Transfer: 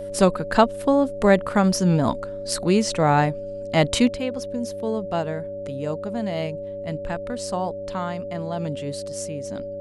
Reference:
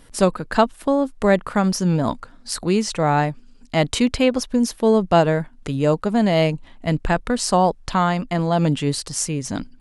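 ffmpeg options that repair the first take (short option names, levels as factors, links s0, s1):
-af "bandreject=f=99.7:t=h:w=4,bandreject=f=199.4:t=h:w=4,bandreject=f=299.1:t=h:w=4,bandreject=f=398.8:t=h:w=4,bandreject=f=570:w=30,asetnsamples=n=441:p=0,asendcmd='4.09 volume volume 10.5dB',volume=1"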